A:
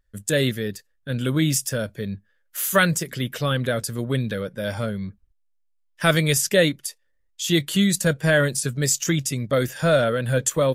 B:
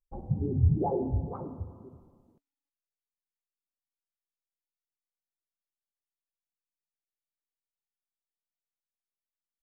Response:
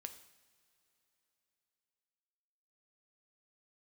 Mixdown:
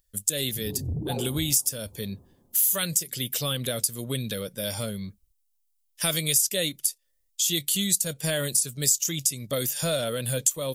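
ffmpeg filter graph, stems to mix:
-filter_complex "[0:a]crystalizer=i=6.5:c=0,volume=0.562,asplit=2[s0][s1];[1:a]asoftclip=type=tanh:threshold=0.0631,adelay=250,volume=1[s2];[s1]apad=whole_len=435651[s3];[s2][s3]sidechaincompress=threshold=0.158:ratio=8:attack=5.1:release=887[s4];[s0][s4]amix=inputs=2:normalize=0,equalizer=f=1600:t=o:w=0.86:g=-9.5,acompressor=threshold=0.0562:ratio=2.5"

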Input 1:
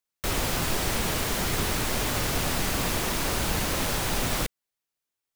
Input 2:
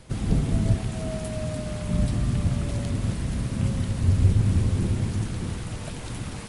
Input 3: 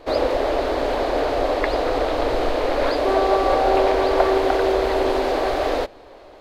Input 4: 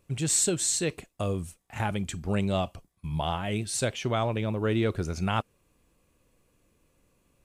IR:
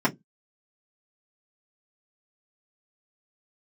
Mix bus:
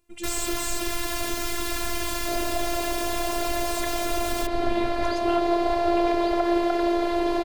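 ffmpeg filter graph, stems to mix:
-filter_complex "[0:a]aecho=1:1:4.7:0.78,volume=1.26[s0];[1:a]adelay=1400,volume=0.178[s1];[2:a]adelay=2200,volume=0.841[s2];[3:a]volume=1[s3];[s0][s1][s2][s3]amix=inputs=4:normalize=0,afftfilt=real='hypot(re,im)*cos(PI*b)':imag='0':win_size=512:overlap=0.75,alimiter=limit=0.316:level=0:latency=1:release=76"

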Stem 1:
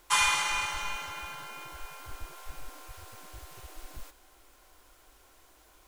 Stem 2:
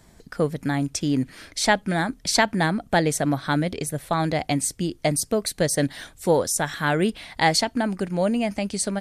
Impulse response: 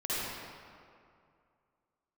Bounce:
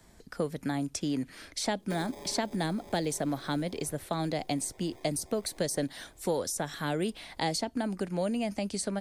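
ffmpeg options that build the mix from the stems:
-filter_complex "[0:a]tiltshelf=f=1400:g=8,acompressor=threshold=0.02:ratio=6,acrusher=samples=31:mix=1:aa=0.000001,adelay=1800,volume=0.501[s0];[1:a]volume=0.631[s1];[s0][s1]amix=inputs=2:normalize=0,equalizer=f=130:w=1.6:g=-4,acrossover=split=96|560|1400|2900[s2][s3][s4][s5][s6];[s2]acompressor=threshold=0.00158:ratio=4[s7];[s3]acompressor=threshold=0.0355:ratio=4[s8];[s4]acompressor=threshold=0.0141:ratio=4[s9];[s5]acompressor=threshold=0.00251:ratio=4[s10];[s6]acompressor=threshold=0.0224:ratio=4[s11];[s7][s8][s9][s10][s11]amix=inputs=5:normalize=0"

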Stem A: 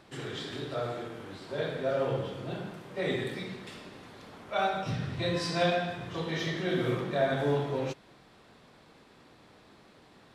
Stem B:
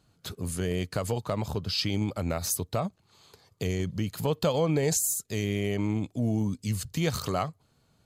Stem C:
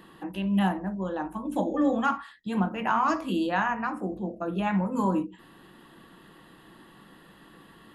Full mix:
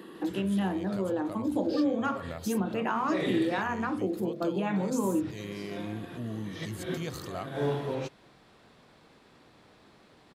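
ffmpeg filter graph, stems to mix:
-filter_complex "[0:a]adelay=150,volume=0.891[s0];[1:a]volume=0.355,asplit=2[s1][s2];[2:a]highpass=270,lowshelf=f=580:t=q:w=1.5:g=7,volume=1.26[s3];[s2]apad=whole_len=462622[s4];[s0][s4]sidechaincompress=threshold=0.00282:ratio=6:attack=9:release=124[s5];[s1][s3]amix=inputs=2:normalize=0,bandreject=f=50:t=h:w=6,bandreject=f=100:t=h:w=6,bandreject=f=150:t=h:w=6,acompressor=threshold=0.0355:ratio=2.5,volume=1[s6];[s5][s6]amix=inputs=2:normalize=0"

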